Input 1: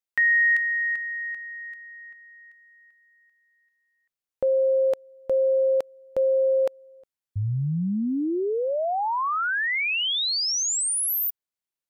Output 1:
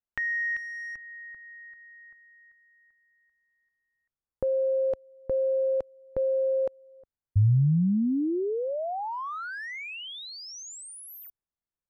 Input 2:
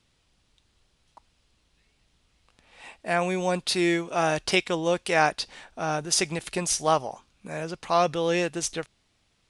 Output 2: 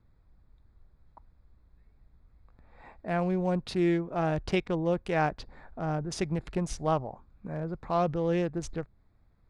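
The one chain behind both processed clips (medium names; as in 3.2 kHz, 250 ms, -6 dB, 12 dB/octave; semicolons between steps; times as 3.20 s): local Wiener filter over 15 samples; RIAA curve playback; tape noise reduction on one side only encoder only; trim -6.5 dB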